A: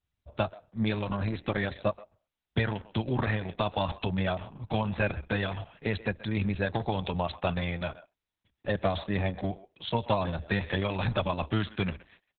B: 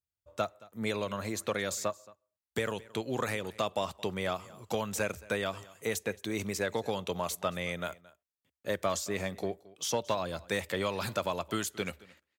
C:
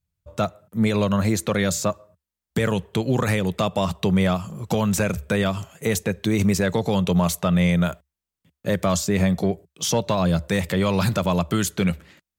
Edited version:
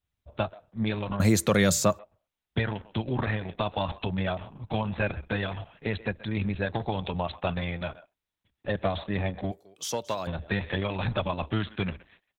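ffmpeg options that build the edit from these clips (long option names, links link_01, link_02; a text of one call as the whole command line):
ffmpeg -i take0.wav -i take1.wav -i take2.wav -filter_complex "[0:a]asplit=3[link_01][link_02][link_03];[link_01]atrim=end=1.202[link_04];[2:a]atrim=start=1.198:end=1.992[link_05];[link_02]atrim=start=1.988:end=9.522[link_06];[1:a]atrim=start=9.518:end=10.272[link_07];[link_03]atrim=start=10.268[link_08];[link_04][link_05]acrossfade=duration=0.004:curve1=hsin:curve2=hsin[link_09];[link_09][link_06]acrossfade=duration=0.004:curve1=hsin:curve2=hsin[link_10];[link_10][link_07]acrossfade=duration=0.004:curve1=hsin:curve2=hsin[link_11];[link_11][link_08]acrossfade=duration=0.004:curve1=hsin:curve2=hsin" out.wav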